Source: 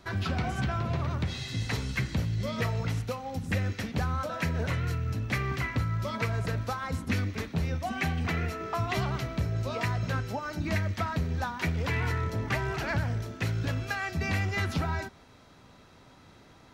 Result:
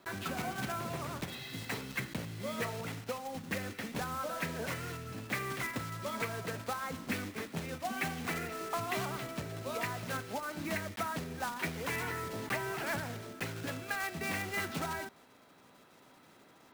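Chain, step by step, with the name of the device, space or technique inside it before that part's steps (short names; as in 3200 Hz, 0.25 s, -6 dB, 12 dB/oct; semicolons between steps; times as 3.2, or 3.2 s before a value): early digital voice recorder (BPF 210–3700 Hz; block floating point 3-bit); gain -3.5 dB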